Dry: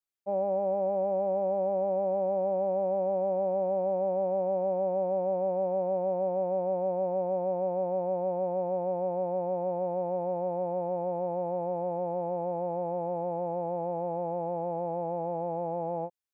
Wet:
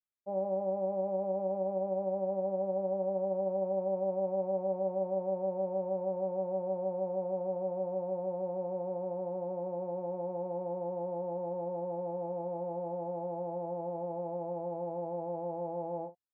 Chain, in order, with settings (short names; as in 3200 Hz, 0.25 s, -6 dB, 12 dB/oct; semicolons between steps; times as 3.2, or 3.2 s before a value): LPF 1000 Hz 6 dB/oct; notch 720 Hz, Q 21; early reflections 21 ms -9.5 dB, 52 ms -12.5 dB; gain -4 dB